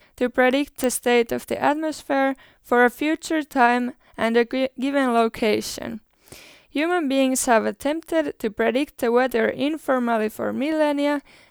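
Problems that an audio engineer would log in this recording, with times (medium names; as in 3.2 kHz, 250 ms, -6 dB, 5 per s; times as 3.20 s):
0.84 s: pop -9 dBFS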